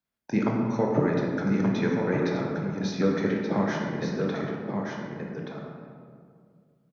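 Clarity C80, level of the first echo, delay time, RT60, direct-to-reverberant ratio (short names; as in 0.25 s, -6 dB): 0.5 dB, -5.5 dB, 1.177 s, 2.1 s, -2.5 dB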